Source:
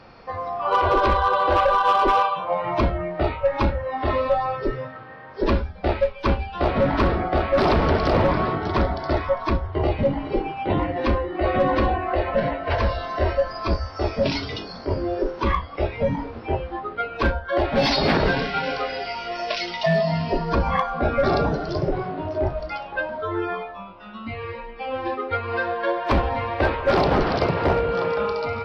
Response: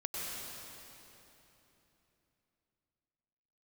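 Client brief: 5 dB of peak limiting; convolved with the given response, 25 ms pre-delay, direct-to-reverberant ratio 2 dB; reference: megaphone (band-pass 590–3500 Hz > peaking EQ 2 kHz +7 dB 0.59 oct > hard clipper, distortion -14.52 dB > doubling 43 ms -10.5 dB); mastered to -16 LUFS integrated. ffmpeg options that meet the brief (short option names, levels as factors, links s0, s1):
-filter_complex "[0:a]alimiter=limit=0.133:level=0:latency=1,asplit=2[s0][s1];[1:a]atrim=start_sample=2205,adelay=25[s2];[s1][s2]afir=irnorm=-1:irlink=0,volume=0.562[s3];[s0][s3]amix=inputs=2:normalize=0,highpass=590,lowpass=3500,equalizer=f=2000:t=o:w=0.59:g=7,asoftclip=type=hard:threshold=0.0841,asplit=2[s4][s5];[s5]adelay=43,volume=0.299[s6];[s4][s6]amix=inputs=2:normalize=0,volume=3.35"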